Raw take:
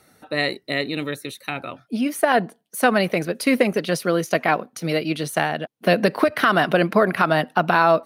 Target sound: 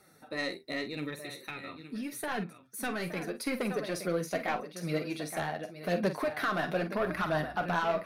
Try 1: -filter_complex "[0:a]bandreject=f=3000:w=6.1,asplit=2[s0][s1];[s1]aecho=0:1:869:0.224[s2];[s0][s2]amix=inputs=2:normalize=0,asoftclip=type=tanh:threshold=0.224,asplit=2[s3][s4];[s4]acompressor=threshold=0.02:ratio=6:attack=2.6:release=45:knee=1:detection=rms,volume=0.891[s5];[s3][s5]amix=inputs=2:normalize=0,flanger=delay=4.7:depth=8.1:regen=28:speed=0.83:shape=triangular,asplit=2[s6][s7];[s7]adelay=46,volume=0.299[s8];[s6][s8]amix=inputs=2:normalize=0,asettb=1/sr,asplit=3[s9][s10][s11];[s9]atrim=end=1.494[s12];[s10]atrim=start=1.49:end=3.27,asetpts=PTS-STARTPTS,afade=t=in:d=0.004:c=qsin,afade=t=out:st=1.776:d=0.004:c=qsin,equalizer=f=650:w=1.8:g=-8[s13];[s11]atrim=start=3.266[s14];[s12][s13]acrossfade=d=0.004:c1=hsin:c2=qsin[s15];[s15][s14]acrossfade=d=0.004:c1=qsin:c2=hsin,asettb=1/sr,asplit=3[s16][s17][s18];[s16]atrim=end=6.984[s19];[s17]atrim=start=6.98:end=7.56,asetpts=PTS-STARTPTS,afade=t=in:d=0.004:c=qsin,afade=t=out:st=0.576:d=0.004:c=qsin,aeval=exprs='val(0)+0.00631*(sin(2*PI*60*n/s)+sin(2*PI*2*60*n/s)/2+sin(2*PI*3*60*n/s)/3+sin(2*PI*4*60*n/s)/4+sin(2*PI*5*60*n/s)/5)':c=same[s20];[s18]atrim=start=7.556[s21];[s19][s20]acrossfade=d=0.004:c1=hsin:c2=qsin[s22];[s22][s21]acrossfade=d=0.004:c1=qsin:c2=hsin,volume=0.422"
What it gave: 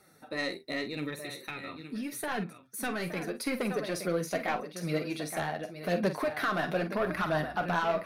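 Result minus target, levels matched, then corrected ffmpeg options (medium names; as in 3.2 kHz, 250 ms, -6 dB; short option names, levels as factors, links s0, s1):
compression: peak gain reduction -9.5 dB
-filter_complex "[0:a]bandreject=f=3000:w=6.1,asplit=2[s0][s1];[s1]aecho=0:1:869:0.224[s2];[s0][s2]amix=inputs=2:normalize=0,asoftclip=type=tanh:threshold=0.224,asplit=2[s3][s4];[s4]acompressor=threshold=0.00531:ratio=6:attack=2.6:release=45:knee=1:detection=rms,volume=0.891[s5];[s3][s5]amix=inputs=2:normalize=0,flanger=delay=4.7:depth=8.1:regen=28:speed=0.83:shape=triangular,asplit=2[s6][s7];[s7]adelay=46,volume=0.299[s8];[s6][s8]amix=inputs=2:normalize=0,asettb=1/sr,asplit=3[s9][s10][s11];[s9]atrim=end=1.494[s12];[s10]atrim=start=1.49:end=3.27,asetpts=PTS-STARTPTS,afade=t=in:d=0.004:c=qsin,afade=t=out:st=1.776:d=0.004:c=qsin,equalizer=f=650:w=1.8:g=-8[s13];[s11]atrim=start=3.266[s14];[s12][s13]acrossfade=d=0.004:c1=hsin:c2=qsin[s15];[s15][s14]acrossfade=d=0.004:c1=qsin:c2=hsin,asettb=1/sr,asplit=3[s16][s17][s18];[s16]atrim=end=6.984[s19];[s17]atrim=start=6.98:end=7.56,asetpts=PTS-STARTPTS,afade=t=in:d=0.004:c=qsin,afade=t=out:st=0.576:d=0.004:c=qsin,aeval=exprs='val(0)+0.00631*(sin(2*PI*60*n/s)+sin(2*PI*2*60*n/s)/2+sin(2*PI*3*60*n/s)/3+sin(2*PI*4*60*n/s)/4+sin(2*PI*5*60*n/s)/5)':c=same[s20];[s18]atrim=start=7.556[s21];[s19][s20]acrossfade=d=0.004:c1=hsin:c2=qsin[s22];[s22][s21]acrossfade=d=0.004:c1=qsin:c2=hsin,volume=0.422"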